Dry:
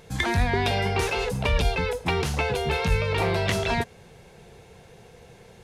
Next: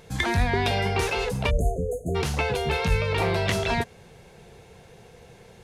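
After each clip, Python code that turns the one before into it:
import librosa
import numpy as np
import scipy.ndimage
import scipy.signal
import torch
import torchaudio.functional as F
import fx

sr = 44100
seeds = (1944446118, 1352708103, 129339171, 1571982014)

y = fx.spec_erase(x, sr, start_s=1.5, length_s=0.65, low_hz=750.0, high_hz=6300.0)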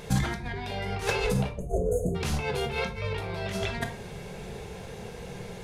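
y = fx.over_compress(x, sr, threshold_db=-30.0, ratio=-0.5)
y = fx.room_shoebox(y, sr, seeds[0], volume_m3=410.0, walls='furnished', distance_m=1.3)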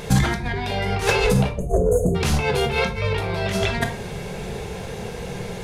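y = 10.0 ** (-14.5 / 20.0) * np.tanh(x / 10.0 ** (-14.5 / 20.0))
y = y * 10.0 ** (9.0 / 20.0)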